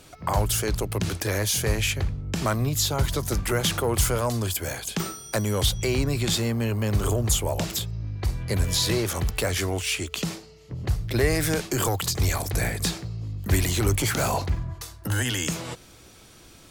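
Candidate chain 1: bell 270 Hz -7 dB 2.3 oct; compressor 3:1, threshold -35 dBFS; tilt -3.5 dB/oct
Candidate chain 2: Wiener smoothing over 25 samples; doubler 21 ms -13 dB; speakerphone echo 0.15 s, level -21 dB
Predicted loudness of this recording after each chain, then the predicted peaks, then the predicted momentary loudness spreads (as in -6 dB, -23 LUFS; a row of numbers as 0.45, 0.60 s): -28.5, -26.5 LUFS; -12.0, -8.5 dBFS; 9, 9 LU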